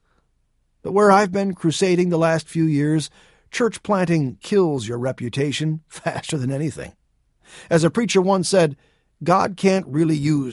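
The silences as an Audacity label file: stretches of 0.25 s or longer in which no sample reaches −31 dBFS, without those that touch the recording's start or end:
3.070000	3.530000	silence
6.890000	7.570000	silence
8.730000	9.220000	silence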